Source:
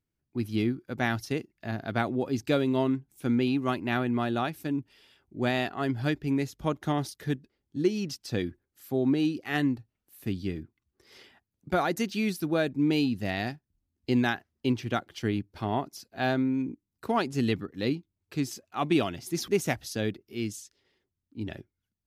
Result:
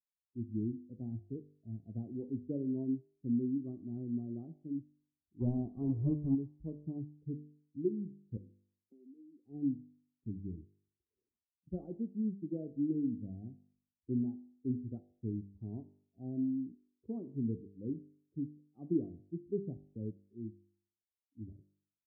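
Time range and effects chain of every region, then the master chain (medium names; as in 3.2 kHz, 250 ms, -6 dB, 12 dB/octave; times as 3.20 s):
5.40–6.35 s: square wave that keeps the level + resonant low-pass 1.1 kHz, resonance Q 3.2
8.37–9.45 s: steep high-pass 180 Hz 48 dB/octave + compression 10:1, threshold -38 dBFS + distance through air 410 m
whole clip: expander on every frequency bin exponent 1.5; inverse Chebyshev low-pass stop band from 1.7 kHz, stop band 70 dB; de-hum 49.61 Hz, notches 24; trim -4 dB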